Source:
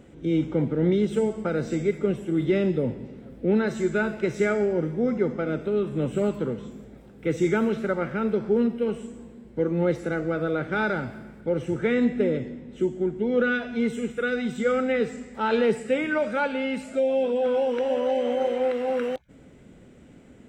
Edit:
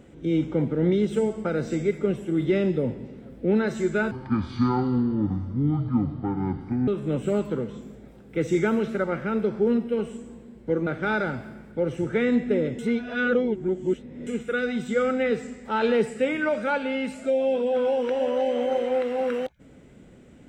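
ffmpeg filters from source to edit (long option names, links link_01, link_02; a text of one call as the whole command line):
ffmpeg -i in.wav -filter_complex "[0:a]asplit=6[link_01][link_02][link_03][link_04][link_05][link_06];[link_01]atrim=end=4.114[link_07];[link_02]atrim=start=4.11:end=5.77,asetpts=PTS-STARTPTS,asetrate=26460,aresample=44100[link_08];[link_03]atrim=start=5.766:end=9.762[link_09];[link_04]atrim=start=10.558:end=12.482[link_10];[link_05]atrim=start=12.478:end=13.962,asetpts=PTS-STARTPTS,areverse[link_11];[link_06]atrim=start=13.958[link_12];[link_07][link_08]acrossfade=duration=0.004:curve1=hsin:curve2=hsin[link_13];[link_13][link_09]acrossfade=duration=0.004:curve1=hsin:curve2=hsin[link_14];[link_14][link_10]acrossfade=duration=0.004:curve1=hsin:curve2=hsin[link_15];[link_15][link_11]acrossfade=duration=0.004:curve1=hsin:curve2=hsin[link_16];[link_16][link_12]acrossfade=duration=0.004:curve1=hsin:curve2=hsin" out.wav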